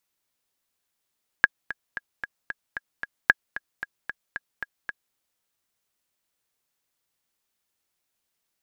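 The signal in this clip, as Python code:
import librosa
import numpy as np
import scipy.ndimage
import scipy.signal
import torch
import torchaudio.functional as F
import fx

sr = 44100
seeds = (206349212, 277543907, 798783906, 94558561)

y = fx.click_track(sr, bpm=226, beats=7, bars=2, hz=1650.0, accent_db=16.0, level_db=-1.5)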